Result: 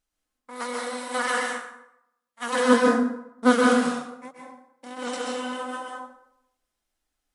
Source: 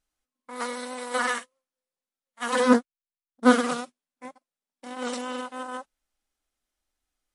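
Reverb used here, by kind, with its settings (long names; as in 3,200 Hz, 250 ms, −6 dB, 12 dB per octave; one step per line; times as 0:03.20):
dense smooth reverb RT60 0.79 s, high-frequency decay 0.65×, pre-delay 115 ms, DRR −1.5 dB
level −1 dB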